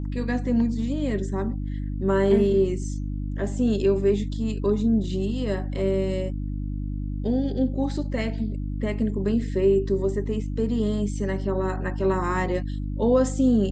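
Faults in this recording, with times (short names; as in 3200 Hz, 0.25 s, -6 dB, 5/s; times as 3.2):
hum 50 Hz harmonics 6 -29 dBFS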